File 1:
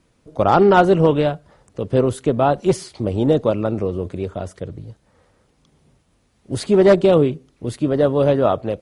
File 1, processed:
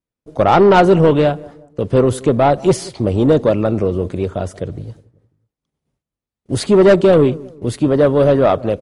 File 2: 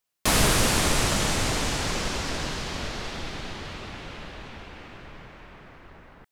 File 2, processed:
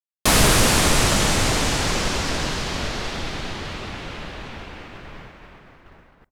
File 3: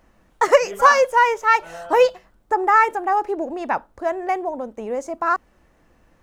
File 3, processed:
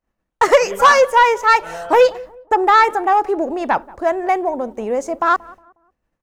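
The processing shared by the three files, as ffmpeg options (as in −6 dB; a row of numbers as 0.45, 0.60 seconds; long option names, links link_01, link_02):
-filter_complex "[0:a]agate=range=-33dB:threshold=-41dB:ratio=3:detection=peak,acontrast=89,asplit=2[link_01][link_02];[link_02]adelay=181,lowpass=frequency=990:poles=1,volume=-20.5dB,asplit=2[link_03][link_04];[link_04]adelay=181,lowpass=frequency=990:poles=1,volume=0.42,asplit=2[link_05][link_06];[link_06]adelay=181,lowpass=frequency=990:poles=1,volume=0.42[link_07];[link_03][link_05][link_07]amix=inputs=3:normalize=0[link_08];[link_01][link_08]amix=inputs=2:normalize=0,volume=-1.5dB"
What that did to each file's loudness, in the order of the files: +3.5, +5.5, +3.5 LU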